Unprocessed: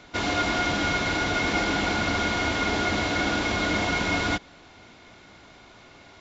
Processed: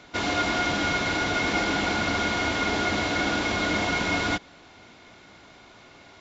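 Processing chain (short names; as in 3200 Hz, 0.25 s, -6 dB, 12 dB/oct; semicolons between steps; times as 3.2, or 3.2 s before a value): low shelf 73 Hz -6 dB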